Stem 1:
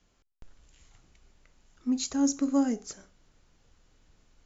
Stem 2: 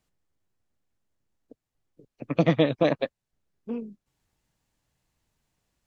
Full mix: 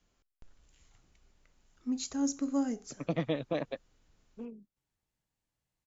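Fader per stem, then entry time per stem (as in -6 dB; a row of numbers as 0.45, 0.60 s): -5.5, -11.0 dB; 0.00, 0.70 s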